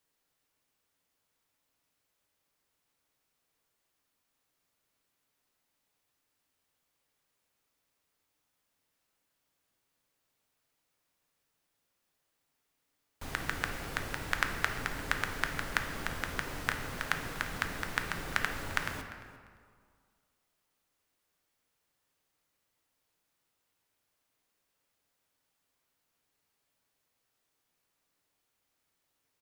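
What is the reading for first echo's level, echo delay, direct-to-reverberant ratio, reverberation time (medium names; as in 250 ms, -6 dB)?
-20.0 dB, 347 ms, 5.0 dB, 2.0 s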